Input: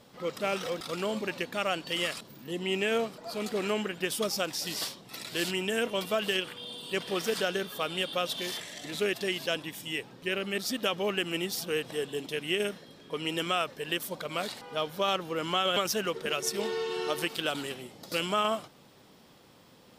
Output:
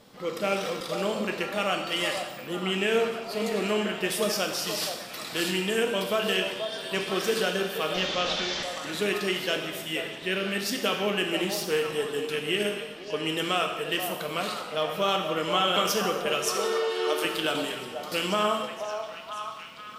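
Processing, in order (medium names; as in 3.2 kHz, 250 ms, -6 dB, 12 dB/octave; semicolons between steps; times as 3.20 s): 7.94–8.63 s: one-bit delta coder 32 kbps, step -28.5 dBFS; 16.51–17.25 s: high-pass 270 Hz 24 dB/octave; repeats whose band climbs or falls 482 ms, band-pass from 690 Hz, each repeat 0.7 oct, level -4.5 dB; gated-style reverb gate 330 ms falling, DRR 3 dB; 11.42–11.94 s: loudspeaker Doppler distortion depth 0.13 ms; trim +1.5 dB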